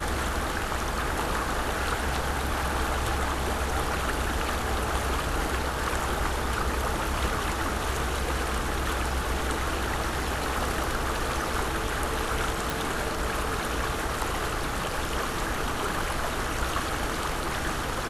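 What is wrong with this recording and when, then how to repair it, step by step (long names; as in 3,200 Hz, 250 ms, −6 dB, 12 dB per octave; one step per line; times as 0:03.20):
0:12.70: click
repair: click removal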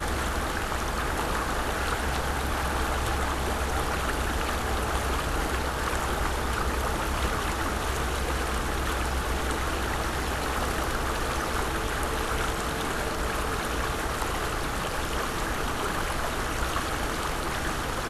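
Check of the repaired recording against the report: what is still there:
none of them is left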